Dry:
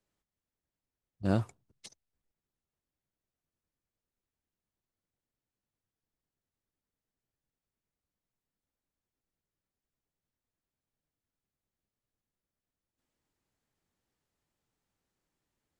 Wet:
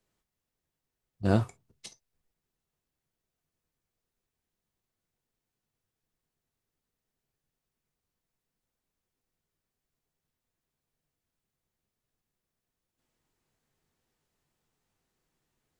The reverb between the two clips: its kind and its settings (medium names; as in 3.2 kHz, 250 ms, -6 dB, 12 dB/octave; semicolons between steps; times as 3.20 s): gated-style reverb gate 80 ms falling, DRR 8 dB; trim +4 dB